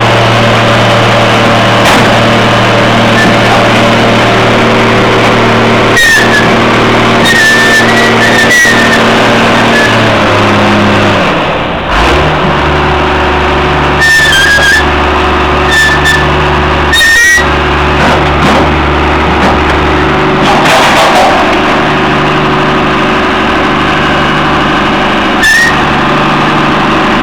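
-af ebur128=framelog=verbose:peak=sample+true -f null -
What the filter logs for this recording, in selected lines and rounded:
Integrated loudness:
  I:          -5.4 LUFS
  Threshold: -15.4 LUFS
Loudness range:
  LRA:         3.0 LU
  Threshold: -25.4 LUFS
  LRA low:    -6.9 LUFS
  LRA high:   -3.9 LUFS
Sample peak:
  Peak:       -2.6 dBFS
True peak:
  Peak:       -2.2 dBFS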